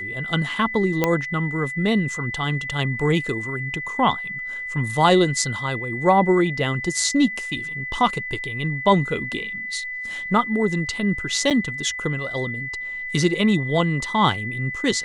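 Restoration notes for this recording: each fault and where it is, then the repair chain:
whistle 2,000 Hz −28 dBFS
0:01.04: click −5 dBFS
0:11.50–0:11.51: drop-out 7.4 ms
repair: click removal
notch filter 2,000 Hz, Q 30
repair the gap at 0:11.50, 7.4 ms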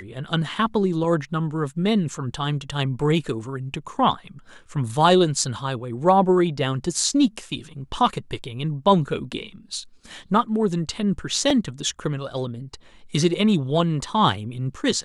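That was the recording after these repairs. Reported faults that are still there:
none of them is left

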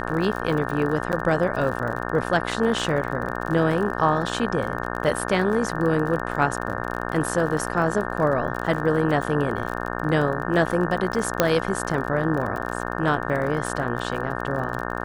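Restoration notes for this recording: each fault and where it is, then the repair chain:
mains buzz 60 Hz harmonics 30 −29 dBFS
surface crackle 36 per second −29 dBFS
0:01.12–0:01.13: drop-out 8.7 ms
0:11.40: click −2 dBFS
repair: click removal
hum removal 60 Hz, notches 30
repair the gap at 0:01.12, 8.7 ms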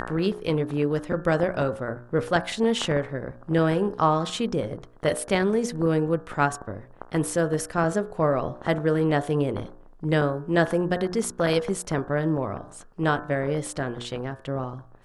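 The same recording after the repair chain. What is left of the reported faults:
0:11.40: click

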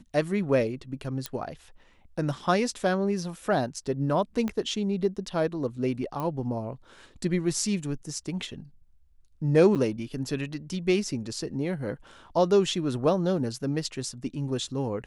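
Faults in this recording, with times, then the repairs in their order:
0:01.26: click −15 dBFS
0:04.48: click −18 dBFS
0:06.20: click −20 dBFS
0:09.75–0:09.76: drop-out 7.9 ms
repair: click removal
repair the gap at 0:09.75, 7.9 ms

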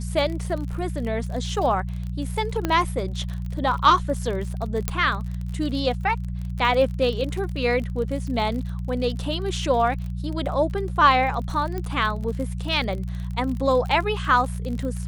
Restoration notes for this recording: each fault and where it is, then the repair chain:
surface crackle 38 per second −30 dBFS
mains hum 60 Hz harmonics 3 −29 dBFS
0:02.65: click −10 dBFS
0:04.88: click −7 dBFS
0:11.78: click −17 dBFS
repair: click removal
hum removal 60 Hz, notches 3

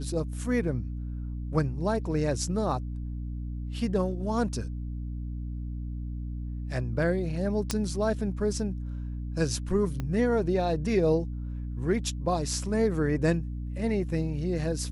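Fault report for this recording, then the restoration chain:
mains hum 60 Hz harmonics 5 −34 dBFS
0:07.71: click −12 dBFS
0:10.00: click −20 dBFS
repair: click removal
hum removal 60 Hz, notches 5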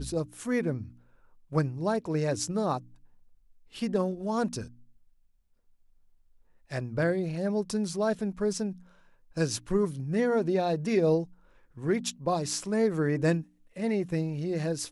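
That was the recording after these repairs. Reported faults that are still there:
0:10.00: click

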